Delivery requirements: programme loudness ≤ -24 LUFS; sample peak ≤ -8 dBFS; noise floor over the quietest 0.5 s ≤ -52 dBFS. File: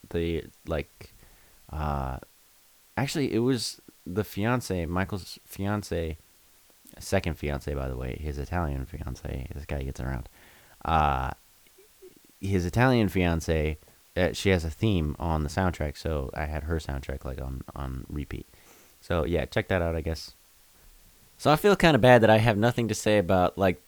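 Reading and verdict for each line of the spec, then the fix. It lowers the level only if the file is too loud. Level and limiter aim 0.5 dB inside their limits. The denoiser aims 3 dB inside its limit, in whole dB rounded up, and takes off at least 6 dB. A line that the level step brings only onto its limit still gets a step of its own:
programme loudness -27.5 LUFS: OK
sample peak -4.5 dBFS: fail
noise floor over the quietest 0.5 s -59 dBFS: OK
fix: limiter -8.5 dBFS

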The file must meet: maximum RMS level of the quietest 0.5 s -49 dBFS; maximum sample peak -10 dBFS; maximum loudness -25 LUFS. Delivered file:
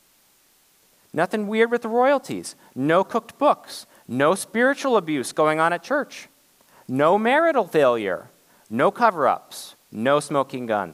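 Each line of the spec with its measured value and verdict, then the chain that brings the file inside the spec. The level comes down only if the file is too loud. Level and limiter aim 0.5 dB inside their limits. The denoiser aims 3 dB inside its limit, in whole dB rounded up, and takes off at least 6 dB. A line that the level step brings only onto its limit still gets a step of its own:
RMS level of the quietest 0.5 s -60 dBFS: OK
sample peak -4.0 dBFS: fail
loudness -21.5 LUFS: fail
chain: gain -4 dB; limiter -10.5 dBFS

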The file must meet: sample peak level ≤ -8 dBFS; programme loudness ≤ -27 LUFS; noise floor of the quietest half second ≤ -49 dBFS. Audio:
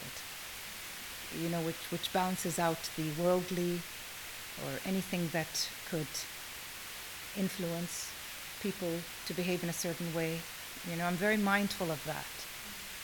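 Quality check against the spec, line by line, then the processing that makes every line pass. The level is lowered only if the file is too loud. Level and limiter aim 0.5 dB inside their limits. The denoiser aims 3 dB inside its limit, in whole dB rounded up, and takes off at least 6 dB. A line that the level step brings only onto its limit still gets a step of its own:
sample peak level -16.0 dBFS: OK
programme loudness -36.0 LUFS: OK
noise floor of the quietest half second -45 dBFS: fail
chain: denoiser 7 dB, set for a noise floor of -45 dBFS

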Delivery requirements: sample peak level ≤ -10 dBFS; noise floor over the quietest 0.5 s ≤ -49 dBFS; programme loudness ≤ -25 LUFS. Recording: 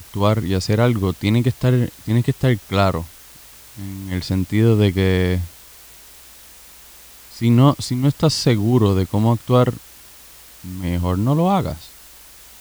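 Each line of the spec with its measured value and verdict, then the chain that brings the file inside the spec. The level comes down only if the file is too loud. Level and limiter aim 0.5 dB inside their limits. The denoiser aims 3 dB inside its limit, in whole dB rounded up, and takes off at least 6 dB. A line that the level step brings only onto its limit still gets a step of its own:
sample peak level -2.0 dBFS: fail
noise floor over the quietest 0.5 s -43 dBFS: fail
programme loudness -18.5 LUFS: fail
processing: gain -7 dB; limiter -10.5 dBFS

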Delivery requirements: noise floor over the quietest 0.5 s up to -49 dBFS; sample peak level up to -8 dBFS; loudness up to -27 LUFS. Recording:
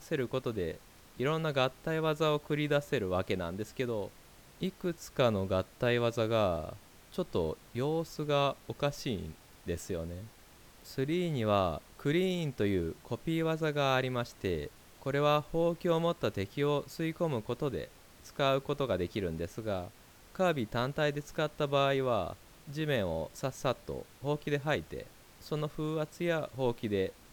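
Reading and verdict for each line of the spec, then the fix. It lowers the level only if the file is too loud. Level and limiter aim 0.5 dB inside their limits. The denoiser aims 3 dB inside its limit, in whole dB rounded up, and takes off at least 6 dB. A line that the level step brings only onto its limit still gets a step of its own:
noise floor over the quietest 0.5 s -57 dBFS: OK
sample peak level -15.0 dBFS: OK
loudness -33.0 LUFS: OK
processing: none

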